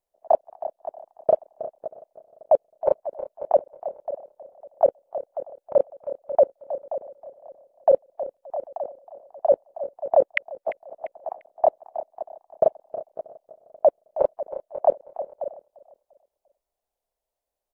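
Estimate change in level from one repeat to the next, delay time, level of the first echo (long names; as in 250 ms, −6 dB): −7.5 dB, 346 ms, −20.5 dB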